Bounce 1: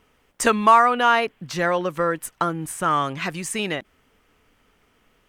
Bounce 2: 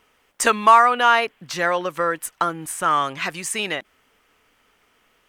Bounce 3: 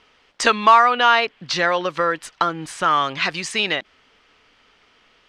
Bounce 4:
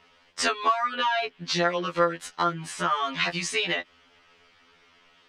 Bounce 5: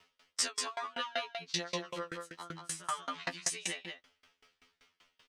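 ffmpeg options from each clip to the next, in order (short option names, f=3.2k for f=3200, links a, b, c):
-af "lowshelf=f=350:g=-11.5,volume=3dB"
-filter_complex "[0:a]asplit=2[a][b];[b]acompressor=threshold=-24dB:ratio=6,volume=-2dB[c];[a][c]amix=inputs=2:normalize=0,lowpass=f=4.5k:t=q:w=2,volume=-1.5dB"
-af "acompressor=threshold=-19dB:ratio=5,afftfilt=real='re*2*eq(mod(b,4),0)':imag='im*2*eq(mod(b,4),0)':win_size=2048:overlap=0.75"
-af "crystalizer=i=2.5:c=0,aecho=1:1:182:0.531,aeval=exprs='val(0)*pow(10,-28*if(lt(mod(5.2*n/s,1),2*abs(5.2)/1000),1-mod(5.2*n/s,1)/(2*abs(5.2)/1000),(mod(5.2*n/s,1)-2*abs(5.2)/1000)/(1-2*abs(5.2)/1000))/20)':c=same,volume=-6dB"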